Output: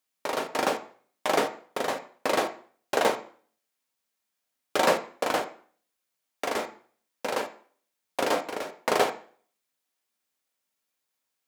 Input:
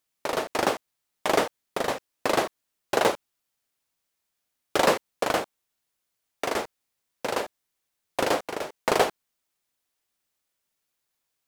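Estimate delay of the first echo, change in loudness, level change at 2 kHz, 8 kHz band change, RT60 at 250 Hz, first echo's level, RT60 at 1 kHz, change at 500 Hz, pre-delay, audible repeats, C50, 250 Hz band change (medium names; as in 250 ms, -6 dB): no echo, -1.5 dB, -1.0 dB, -2.0 dB, 0.45 s, no echo, 0.50 s, -1.5 dB, 3 ms, no echo, 13.5 dB, -2.0 dB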